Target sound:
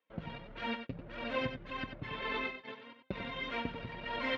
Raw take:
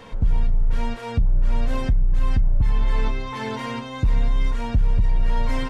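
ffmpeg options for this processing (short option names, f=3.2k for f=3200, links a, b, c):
-af "agate=range=-39dB:threshold=-25dB:ratio=16:detection=peak,tiltshelf=f=1.5k:g=-7,acompressor=threshold=-23dB:ratio=6,flanger=delay=2.4:depth=5.6:regen=34:speed=1.3:shape=triangular,atempo=1.3,highpass=200,equalizer=f=320:t=q:w=4:g=3,equalizer=f=560:t=q:w=4:g=6,equalizer=f=850:t=q:w=4:g=-4,lowpass=f=3.3k:w=0.5412,lowpass=f=3.3k:w=1.3066,aecho=1:1:94:0.376,volume=3.5dB"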